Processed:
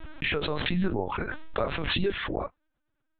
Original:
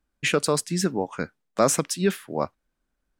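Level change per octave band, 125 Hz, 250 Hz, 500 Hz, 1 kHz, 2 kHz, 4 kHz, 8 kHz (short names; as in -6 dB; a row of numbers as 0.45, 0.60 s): -2.5 dB, -4.5 dB, -6.0 dB, -5.0 dB, 0.0 dB, -0.5 dB, under -40 dB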